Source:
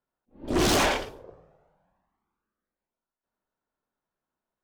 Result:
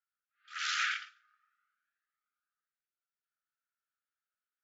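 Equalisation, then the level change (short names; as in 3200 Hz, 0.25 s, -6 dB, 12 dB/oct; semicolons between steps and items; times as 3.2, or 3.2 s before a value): brick-wall FIR band-pass 1200–7500 Hz; tilt -4 dB/oct; 0.0 dB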